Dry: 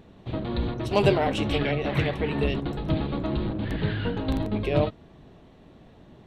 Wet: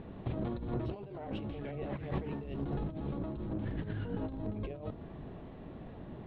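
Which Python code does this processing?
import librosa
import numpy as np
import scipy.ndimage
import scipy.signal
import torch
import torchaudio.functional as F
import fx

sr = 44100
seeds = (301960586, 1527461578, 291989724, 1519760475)

y = fx.dynamic_eq(x, sr, hz=2200.0, q=0.89, threshold_db=-43.0, ratio=4.0, max_db=-5)
y = fx.over_compress(y, sr, threshold_db=-35.0, ratio=-1.0)
y = fx.quant_companded(y, sr, bits=6, at=(1.96, 2.65))
y = fx.air_absorb(y, sr, metres=410.0)
y = y * librosa.db_to_amplitude(-3.0)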